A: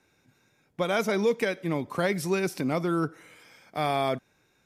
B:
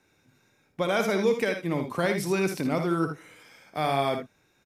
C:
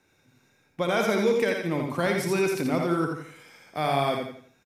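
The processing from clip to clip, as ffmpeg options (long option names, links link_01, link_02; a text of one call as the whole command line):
ffmpeg -i in.wav -af "aecho=1:1:58|78:0.376|0.335" out.wav
ffmpeg -i in.wav -af "aecho=1:1:86|172|258|344:0.531|0.181|0.0614|0.0209" out.wav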